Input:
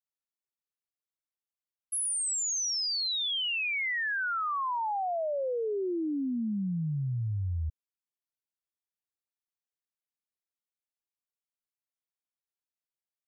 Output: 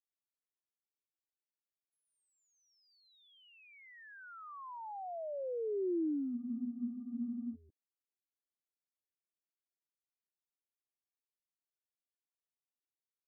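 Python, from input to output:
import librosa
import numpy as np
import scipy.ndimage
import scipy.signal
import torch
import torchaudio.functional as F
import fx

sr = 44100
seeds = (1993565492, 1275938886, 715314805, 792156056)

y = fx.cheby_harmonics(x, sr, harmonics=(3, 5), levels_db=(-36, -35), full_scale_db=-27.5)
y = fx.ladder_bandpass(y, sr, hz=380.0, resonance_pct=45)
y = fx.spec_freeze(y, sr, seeds[0], at_s=6.37, hold_s=1.17)
y = F.gain(torch.from_numpy(y), 3.5).numpy()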